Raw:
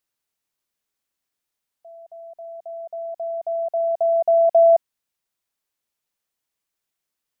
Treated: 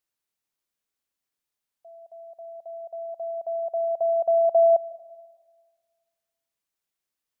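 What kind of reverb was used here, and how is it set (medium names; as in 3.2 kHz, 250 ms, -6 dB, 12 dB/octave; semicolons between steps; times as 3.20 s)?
algorithmic reverb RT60 1.6 s, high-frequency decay 1×, pre-delay 105 ms, DRR 19.5 dB; trim -4 dB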